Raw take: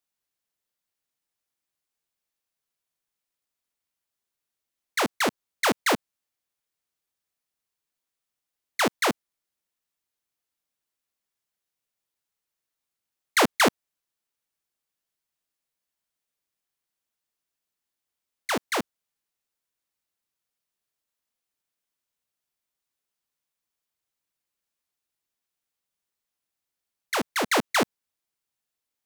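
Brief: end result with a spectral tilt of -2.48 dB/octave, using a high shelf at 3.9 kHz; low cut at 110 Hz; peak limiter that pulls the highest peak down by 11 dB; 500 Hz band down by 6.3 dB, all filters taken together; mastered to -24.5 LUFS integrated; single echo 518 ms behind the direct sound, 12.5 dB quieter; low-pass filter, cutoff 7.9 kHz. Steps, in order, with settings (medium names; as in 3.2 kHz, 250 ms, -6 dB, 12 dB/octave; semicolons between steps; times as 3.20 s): high-pass 110 Hz; low-pass 7.9 kHz; peaking EQ 500 Hz -8 dB; treble shelf 3.9 kHz -9 dB; peak limiter -22.5 dBFS; delay 518 ms -12.5 dB; trim +9.5 dB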